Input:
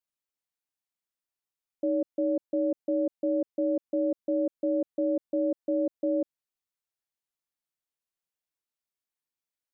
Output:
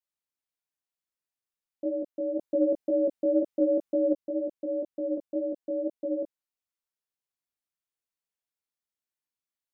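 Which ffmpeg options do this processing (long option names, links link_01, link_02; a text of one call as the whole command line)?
ffmpeg -i in.wav -filter_complex "[0:a]flanger=delay=17:depth=4.5:speed=2,asettb=1/sr,asplit=3[link_01][link_02][link_03];[link_01]atrim=end=2.394[link_04];[link_02]atrim=start=2.39:end=4.14,asetpts=PTS-STARTPTS,afade=type=in:duration=0.004:curve=qsin,afade=type=out:start_time=1.746:duration=0.004:curve=qsin,acontrast=51[link_05];[link_03]atrim=start=4.136[link_06];[link_04][link_05]acrossfade=duration=0.004:curve1=hsin:curve2=qsin[link_07];[link_07][link_06]acrossfade=duration=0.004:curve1=qsin:curve2=hsin" out.wav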